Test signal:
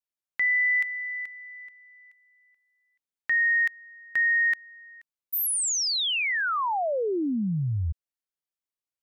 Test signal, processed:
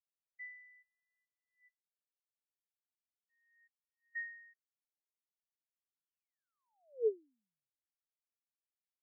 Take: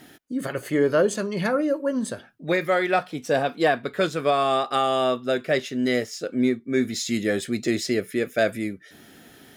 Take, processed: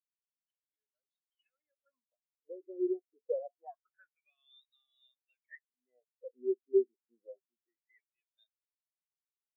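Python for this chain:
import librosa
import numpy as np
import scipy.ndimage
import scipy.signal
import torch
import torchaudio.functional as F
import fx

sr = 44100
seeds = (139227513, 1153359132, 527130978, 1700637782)

y = fx.filter_lfo_bandpass(x, sr, shape='sine', hz=0.26, low_hz=370.0, high_hz=4000.0, q=7.1)
y = fx.spectral_expand(y, sr, expansion=2.5)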